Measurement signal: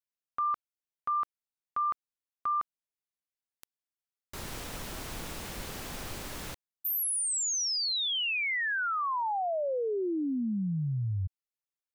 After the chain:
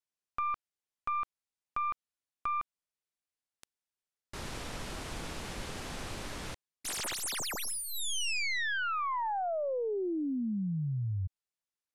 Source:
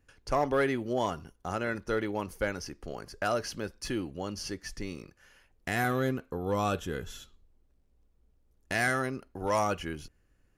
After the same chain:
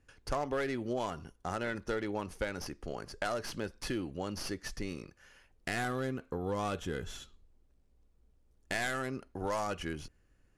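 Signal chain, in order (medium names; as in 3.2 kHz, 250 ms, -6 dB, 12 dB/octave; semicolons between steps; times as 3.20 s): tracing distortion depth 0.22 ms; low-pass 11 kHz 24 dB/octave; compression 4:1, threshold -31 dBFS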